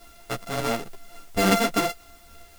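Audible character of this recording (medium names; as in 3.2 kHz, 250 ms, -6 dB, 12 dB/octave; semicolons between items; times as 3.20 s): a buzz of ramps at a fixed pitch in blocks of 64 samples; tremolo saw down 3.5 Hz, depth 40%; a quantiser's noise floor 10-bit, dither triangular; a shimmering, thickened sound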